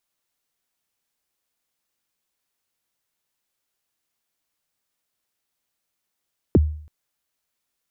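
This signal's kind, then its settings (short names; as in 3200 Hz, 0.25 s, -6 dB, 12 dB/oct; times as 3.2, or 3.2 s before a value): kick drum length 0.33 s, from 470 Hz, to 76 Hz, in 29 ms, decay 0.54 s, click off, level -8.5 dB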